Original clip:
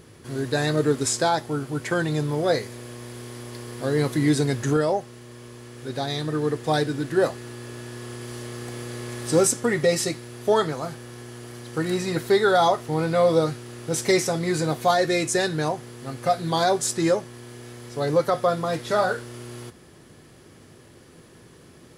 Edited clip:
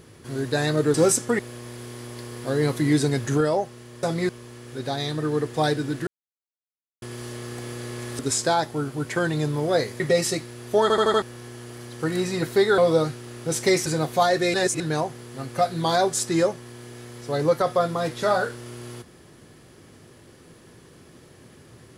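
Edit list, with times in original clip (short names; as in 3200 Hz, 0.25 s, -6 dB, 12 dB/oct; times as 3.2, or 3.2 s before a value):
0.94–2.75 swap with 9.29–9.74
7.17–8.12 mute
10.56 stutter in place 0.08 s, 5 plays
12.52–13.2 cut
14.28–14.54 move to 5.39
15.22–15.48 reverse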